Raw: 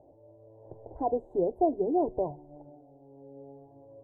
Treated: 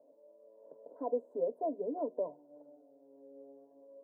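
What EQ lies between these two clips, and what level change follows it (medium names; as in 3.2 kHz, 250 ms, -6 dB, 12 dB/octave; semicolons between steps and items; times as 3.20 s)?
high-pass 250 Hz 24 dB/octave; static phaser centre 530 Hz, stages 8; -2.5 dB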